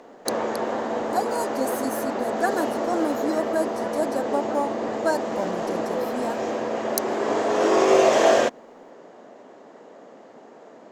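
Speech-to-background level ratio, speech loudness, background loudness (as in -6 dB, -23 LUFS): -5.0 dB, -29.5 LUFS, -24.5 LUFS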